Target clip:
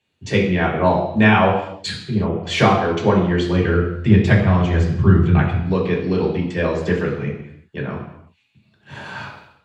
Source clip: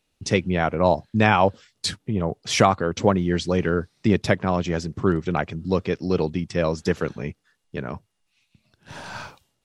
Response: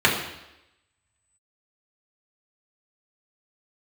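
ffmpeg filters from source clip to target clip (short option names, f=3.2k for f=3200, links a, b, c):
-filter_complex "[0:a]asettb=1/sr,asplit=3[a][b][c];[a]atrim=end=3.284[d];[b]atrim=start=3.28:end=5.58,asetpts=PTS-STARTPTS,afade=t=in:d=0.004:c=qsin,afade=t=out:st=2.296:d=0.004:c=qsin,asubboost=boost=9:cutoff=150[e];[c]atrim=start=5.576[f];[d][e]acrossfade=d=0.004:c1=hsin:c2=qsin[g];[g][f]acrossfade=d=0.004:c1=qsin:c2=hsin[h];[1:a]atrim=start_sample=2205,afade=t=out:st=0.43:d=0.01,atrim=end_sample=19404[i];[h][i]afir=irnorm=-1:irlink=0,volume=-16dB"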